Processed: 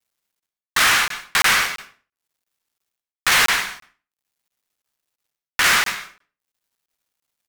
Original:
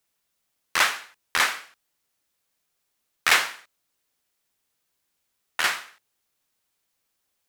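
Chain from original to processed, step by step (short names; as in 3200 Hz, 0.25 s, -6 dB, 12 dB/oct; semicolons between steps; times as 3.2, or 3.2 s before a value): one-sided fold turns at -17 dBFS; HPF 940 Hz 12 dB/oct; high shelf 5600 Hz -5 dB; transient shaper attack +7 dB, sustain -6 dB; reverse; compressor, threshold -33 dBFS, peak gain reduction 18.5 dB; reverse; bit-crush 12-bit; in parallel at -8.5 dB: fuzz box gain 52 dB, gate -60 dBFS; on the sum: speakerphone echo 0.1 s, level -12 dB; reverb RT60 0.35 s, pre-delay 0.111 s, DRR 11 dB; crackling interface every 0.34 s, samples 1024, zero, from 0.4; gain +5.5 dB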